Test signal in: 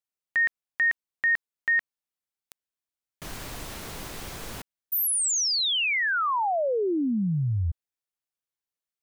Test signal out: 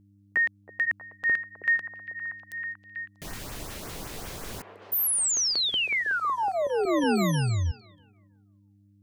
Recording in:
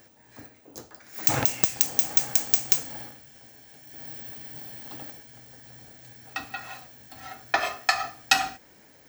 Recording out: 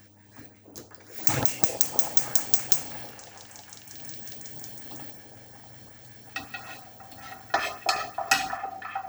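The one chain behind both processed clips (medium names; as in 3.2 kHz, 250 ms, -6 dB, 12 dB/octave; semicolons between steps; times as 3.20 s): LFO notch saw up 5.4 Hz 390–4400 Hz; mains buzz 100 Hz, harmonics 3, -59 dBFS -4 dB/octave; repeats whose band climbs or falls 320 ms, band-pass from 510 Hz, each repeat 0.7 oct, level -2.5 dB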